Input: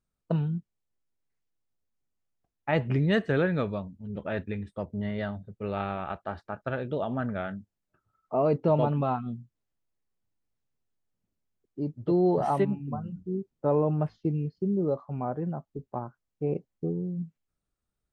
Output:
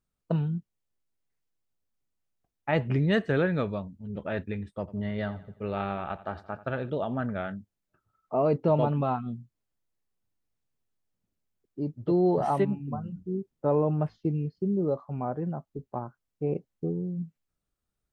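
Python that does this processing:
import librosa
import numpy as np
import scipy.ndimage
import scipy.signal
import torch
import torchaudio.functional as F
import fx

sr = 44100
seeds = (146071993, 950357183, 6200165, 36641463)

y = fx.echo_feedback(x, sr, ms=86, feedback_pct=45, wet_db=-17.0, at=(4.79, 6.9))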